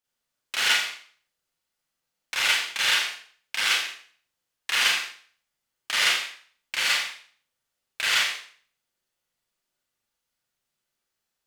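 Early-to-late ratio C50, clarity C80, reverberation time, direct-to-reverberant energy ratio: 2.0 dB, 6.0 dB, 0.50 s, -6.0 dB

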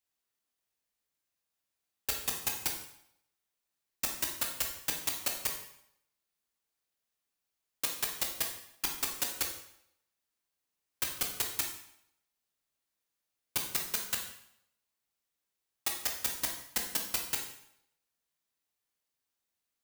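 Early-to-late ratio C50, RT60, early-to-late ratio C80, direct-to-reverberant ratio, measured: 5.5 dB, 0.75 s, 9.0 dB, 1.5 dB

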